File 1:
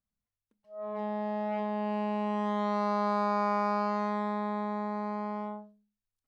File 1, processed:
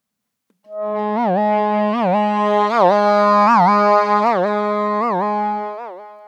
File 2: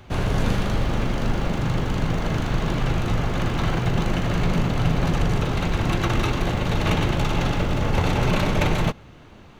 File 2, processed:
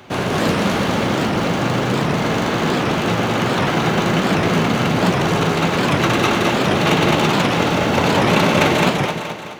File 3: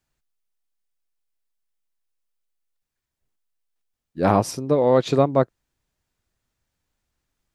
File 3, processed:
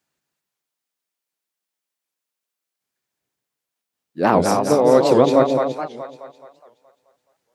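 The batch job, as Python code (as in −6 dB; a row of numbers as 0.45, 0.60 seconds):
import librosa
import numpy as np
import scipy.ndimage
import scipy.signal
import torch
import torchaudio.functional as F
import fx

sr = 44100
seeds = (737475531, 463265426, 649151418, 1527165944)

p1 = scipy.signal.sosfilt(scipy.signal.butter(2, 190.0, 'highpass', fs=sr, output='sos'), x)
p2 = p1 + fx.echo_split(p1, sr, split_hz=540.0, low_ms=146, high_ms=212, feedback_pct=52, wet_db=-3, dry=0)
p3 = fx.record_warp(p2, sr, rpm=78.0, depth_cents=250.0)
y = librosa.util.normalize(p3) * 10.0 ** (-1.5 / 20.0)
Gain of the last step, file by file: +14.5, +7.5, +2.5 decibels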